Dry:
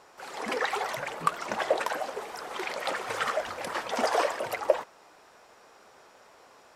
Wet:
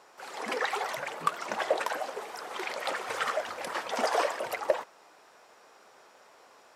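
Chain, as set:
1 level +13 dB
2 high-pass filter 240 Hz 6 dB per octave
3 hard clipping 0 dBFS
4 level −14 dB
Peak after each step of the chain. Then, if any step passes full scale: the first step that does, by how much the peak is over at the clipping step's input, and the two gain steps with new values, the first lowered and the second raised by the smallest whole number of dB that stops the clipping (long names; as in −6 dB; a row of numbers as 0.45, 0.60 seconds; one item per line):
+6.0, +5.5, 0.0, −14.0 dBFS
step 1, 5.5 dB
step 1 +7 dB, step 4 −8 dB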